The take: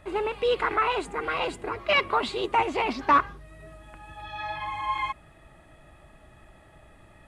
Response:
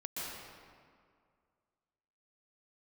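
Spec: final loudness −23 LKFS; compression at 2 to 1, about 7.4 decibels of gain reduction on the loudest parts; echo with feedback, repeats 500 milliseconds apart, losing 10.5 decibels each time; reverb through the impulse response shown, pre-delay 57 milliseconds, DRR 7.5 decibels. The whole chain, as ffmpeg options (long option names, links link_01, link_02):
-filter_complex "[0:a]acompressor=threshold=-29dB:ratio=2,aecho=1:1:500|1000|1500:0.299|0.0896|0.0269,asplit=2[link_01][link_02];[1:a]atrim=start_sample=2205,adelay=57[link_03];[link_02][link_03]afir=irnorm=-1:irlink=0,volume=-9.5dB[link_04];[link_01][link_04]amix=inputs=2:normalize=0,volume=7.5dB"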